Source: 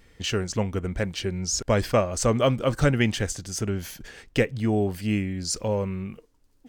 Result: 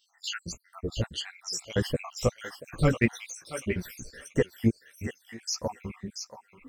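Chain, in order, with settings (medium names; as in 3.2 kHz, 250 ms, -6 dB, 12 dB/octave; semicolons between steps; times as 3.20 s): random holes in the spectrogram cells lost 78%; thinning echo 682 ms, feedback 18%, high-pass 1.1 kHz, level -7 dB; in parallel at -6 dB: saturation -17 dBFS, distortion -13 dB; 4.38–5.32 s: on the sum: upward compressor, threshold -35 dBFS; chorus voices 2, 1.5 Hz, delay 15 ms, depth 3 ms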